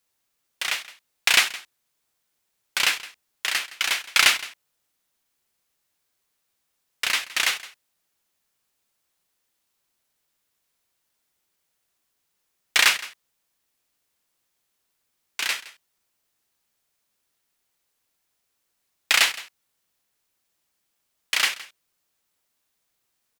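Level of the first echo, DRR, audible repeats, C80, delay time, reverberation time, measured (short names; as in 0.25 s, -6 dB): -18.5 dB, none, 1, none, 0.166 s, none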